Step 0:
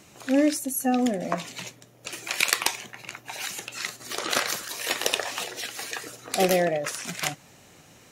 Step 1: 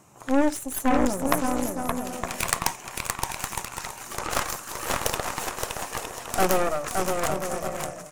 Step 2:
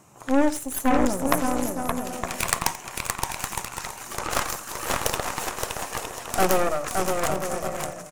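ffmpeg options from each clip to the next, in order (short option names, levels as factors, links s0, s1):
-af "equalizer=f=125:t=o:w=1:g=5,equalizer=f=1000:t=o:w=1:g=10,equalizer=f=2000:t=o:w=1:g=-4,equalizer=f=4000:t=o:w=1:g=-9,equalizer=f=8000:t=o:w=1:g=4,aecho=1:1:570|912|1117|1240|1314:0.631|0.398|0.251|0.158|0.1,aeval=exprs='0.841*(cos(1*acos(clip(val(0)/0.841,-1,1)))-cos(1*PI/2))+0.119*(cos(3*acos(clip(val(0)/0.841,-1,1)))-cos(3*PI/2))+0.266*(cos(6*acos(clip(val(0)/0.841,-1,1)))-cos(6*PI/2))+0.266*(cos(8*acos(clip(val(0)/0.841,-1,1)))-cos(8*PI/2))':c=same"
-af "aecho=1:1:86:0.133,volume=1.12"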